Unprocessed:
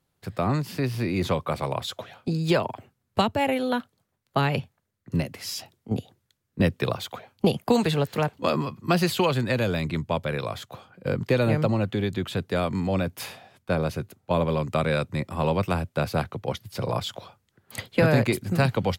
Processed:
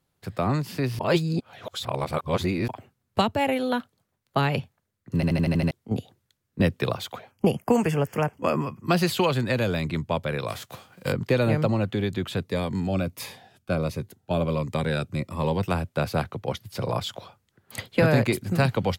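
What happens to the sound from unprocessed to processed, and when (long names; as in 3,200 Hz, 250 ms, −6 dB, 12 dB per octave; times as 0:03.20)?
0:00.99–0:02.68: reverse
0:05.15: stutter in place 0.08 s, 7 plays
0:07.31–0:08.86: Butterworth band-reject 3,900 Hz, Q 1.8
0:10.48–0:11.11: spectral envelope flattened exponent 0.6
0:12.43–0:15.68: phaser whose notches keep moving one way falling 1.4 Hz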